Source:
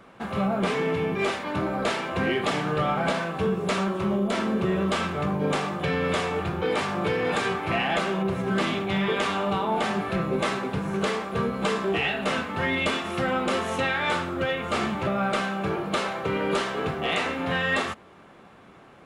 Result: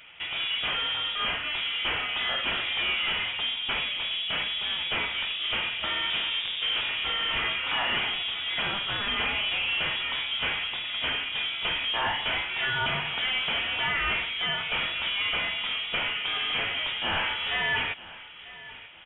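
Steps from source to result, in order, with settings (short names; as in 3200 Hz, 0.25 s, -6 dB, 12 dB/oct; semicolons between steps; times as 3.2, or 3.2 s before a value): 6.1–6.89 tilt -3.5 dB/oct; soft clip -25 dBFS, distortion -11 dB; HPF 510 Hz 6 dB/oct; on a send: feedback echo 0.942 s, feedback 28%, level -18 dB; on the sum: inverted band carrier 3600 Hz; gain +3.5 dB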